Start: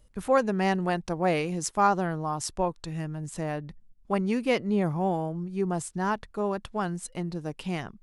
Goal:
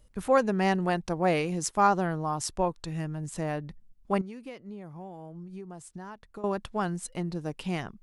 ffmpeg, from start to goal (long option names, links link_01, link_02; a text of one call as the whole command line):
ffmpeg -i in.wav -filter_complex "[0:a]asettb=1/sr,asplit=3[link_01][link_02][link_03];[link_01]atrim=end=4.214[link_04];[link_02]atrim=start=4.21:end=6.44,asetpts=PTS-STARTPTS,afade=type=in:duration=0.004:curve=qsin,afade=type=out:start_time=2.226:duration=0.004:curve=qsin,acompressor=threshold=-39dB:ratio=12[link_05];[link_03]atrim=start=6.436[link_06];[link_04][link_05]acrossfade=duration=0.004:curve1=hsin:curve2=qsin[link_07];[link_07][link_06]acrossfade=duration=0.004:curve1=qsin:curve2=hsin" out.wav